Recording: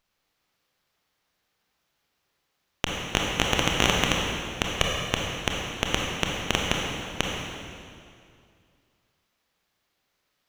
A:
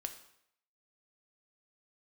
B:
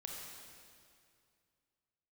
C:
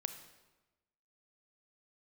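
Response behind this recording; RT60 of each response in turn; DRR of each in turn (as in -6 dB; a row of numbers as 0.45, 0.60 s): B; 0.70, 2.3, 1.1 s; 6.5, -1.5, 8.5 dB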